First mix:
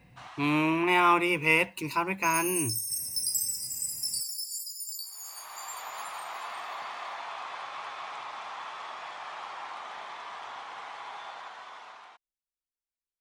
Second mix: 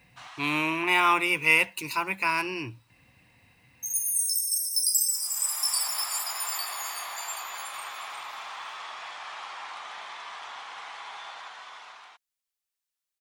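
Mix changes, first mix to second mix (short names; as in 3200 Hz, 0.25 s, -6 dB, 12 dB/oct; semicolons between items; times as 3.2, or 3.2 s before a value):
second sound: entry +1.60 s; master: add tilt shelf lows -5.5 dB, about 1100 Hz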